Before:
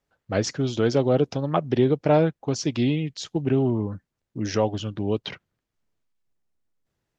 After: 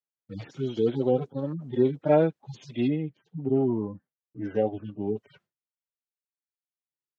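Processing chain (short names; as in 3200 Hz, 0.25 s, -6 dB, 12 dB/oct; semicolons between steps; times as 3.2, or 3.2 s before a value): median-filter separation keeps harmonic; Bessel high-pass 210 Hz, order 2; gate with hold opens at -55 dBFS; 2.87–5.08 LPF 1600 Hz -> 2900 Hz 12 dB/oct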